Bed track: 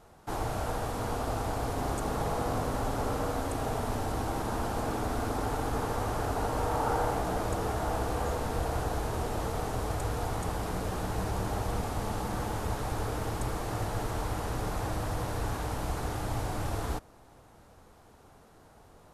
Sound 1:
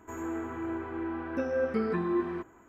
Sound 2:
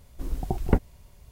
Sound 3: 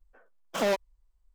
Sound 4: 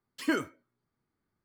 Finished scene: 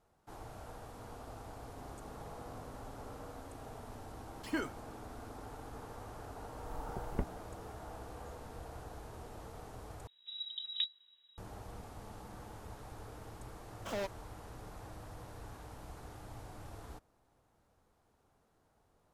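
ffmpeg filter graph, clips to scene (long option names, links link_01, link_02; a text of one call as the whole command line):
ffmpeg -i bed.wav -i cue0.wav -i cue1.wav -i cue2.wav -i cue3.wav -filter_complex "[2:a]asplit=2[link_01][link_02];[0:a]volume=-16.5dB[link_03];[link_02]lowpass=frequency=3300:width_type=q:width=0.5098,lowpass=frequency=3300:width_type=q:width=0.6013,lowpass=frequency=3300:width_type=q:width=0.9,lowpass=frequency=3300:width_type=q:width=2.563,afreqshift=-3900[link_04];[link_03]asplit=2[link_05][link_06];[link_05]atrim=end=10.074[link_07];[link_04]atrim=end=1.31,asetpts=PTS-STARTPTS,volume=-15.5dB[link_08];[link_06]atrim=start=11.376[link_09];[4:a]atrim=end=1.44,asetpts=PTS-STARTPTS,volume=-8dB,afade=type=in:duration=0.004:curve=hsin,afade=type=out:start_time=1.436:duration=0.004:curve=hsin,adelay=187425S[link_10];[link_01]atrim=end=1.31,asetpts=PTS-STARTPTS,volume=-15dB,afade=type=in:duration=0.004:curve=hsin,afade=type=out:start_time=1.306:duration=0.004:curve=hsin,adelay=6460[link_11];[3:a]atrim=end=1.34,asetpts=PTS-STARTPTS,volume=-12dB,afade=type=in:duration=0.004:curve=hsin,afade=type=out:start_time=1.336:duration=0.004:curve=hsin,adelay=13310[link_12];[link_07][link_08]acrossfade=duration=0.004:curve1=hsin:curve2=hsin[link_13];[link_13][link_09]acrossfade=duration=0.004:curve1=hsin:curve2=hsin[link_14];[link_14][link_10][link_11][link_12]amix=inputs=4:normalize=0" out.wav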